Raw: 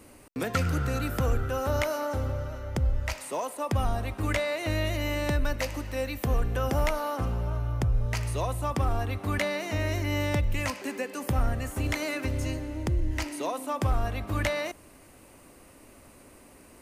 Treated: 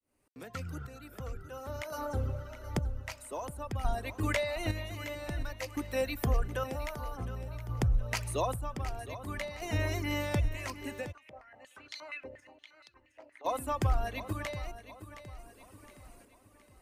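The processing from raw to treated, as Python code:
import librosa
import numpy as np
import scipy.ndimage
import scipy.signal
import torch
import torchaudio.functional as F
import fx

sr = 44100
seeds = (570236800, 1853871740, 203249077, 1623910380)

y = fx.fade_in_head(x, sr, length_s=3.58)
y = fx.dereverb_blind(y, sr, rt60_s=1.8)
y = fx.rider(y, sr, range_db=3, speed_s=0.5)
y = fx.chopper(y, sr, hz=0.52, depth_pct=60, duty_pct=45)
y = fx.echo_feedback(y, sr, ms=716, feedback_pct=44, wet_db=-13.0)
y = fx.filter_held_bandpass(y, sr, hz=8.5, low_hz=600.0, high_hz=4300.0, at=(11.11, 13.44), fade=0.02)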